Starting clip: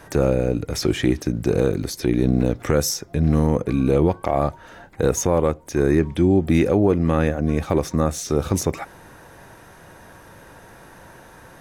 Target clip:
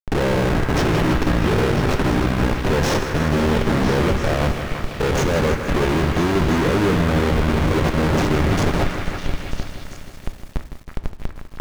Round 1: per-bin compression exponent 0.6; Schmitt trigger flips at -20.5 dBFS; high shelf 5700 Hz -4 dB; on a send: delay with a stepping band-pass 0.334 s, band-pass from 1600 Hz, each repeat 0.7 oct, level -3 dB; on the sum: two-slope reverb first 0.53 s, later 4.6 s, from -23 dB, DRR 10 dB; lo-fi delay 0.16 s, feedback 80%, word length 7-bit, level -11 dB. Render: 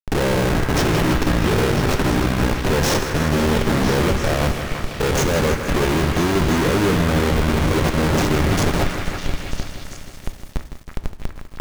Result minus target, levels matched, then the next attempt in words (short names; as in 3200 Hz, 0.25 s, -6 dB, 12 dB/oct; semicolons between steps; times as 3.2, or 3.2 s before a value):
8000 Hz band +5.0 dB
per-bin compression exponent 0.6; Schmitt trigger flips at -20.5 dBFS; high shelf 5700 Hz -13.5 dB; on a send: delay with a stepping band-pass 0.334 s, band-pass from 1600 Hz, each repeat 0.7 oct, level -3 dB; on the sum: two-slope reverb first 0.53 s, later 4.6 s, from -23 dB, DRR 10 dB; lo-fi delay 0.16 s, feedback 80%, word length 7-bit, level -11 dB